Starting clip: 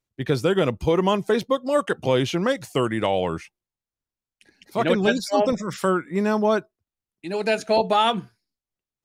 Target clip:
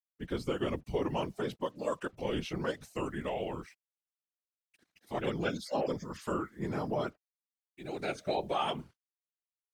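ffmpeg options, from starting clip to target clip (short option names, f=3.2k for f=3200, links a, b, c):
-af "acrusher=bits=8:mix=0:aa=0.5,asetrate=41013,aresample=44100,afftfilt=real='hypot(re,im)*cos(2*PI*random(0))':imag='hypot(re,im)*sin(2*PI*random(1))':win_size=512:overlap=0.75,volume=-7dB"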